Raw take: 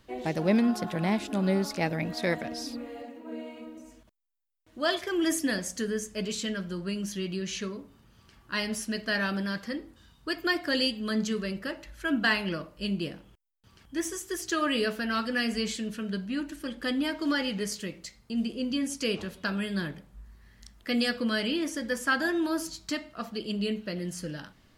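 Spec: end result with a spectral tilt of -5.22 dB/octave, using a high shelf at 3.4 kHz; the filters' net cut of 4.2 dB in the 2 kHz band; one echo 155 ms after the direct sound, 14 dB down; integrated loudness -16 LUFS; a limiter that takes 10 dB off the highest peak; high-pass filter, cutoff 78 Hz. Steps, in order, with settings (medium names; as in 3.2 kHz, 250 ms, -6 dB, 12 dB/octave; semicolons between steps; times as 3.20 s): high-pass 78 Hz; peaking EQ 2 kHz -3 dB; treble shelf 3.4 kHz -8.5 dB; peak limiter -23.5 dBFS; delay 155 ms -14 dB; trim +18 dB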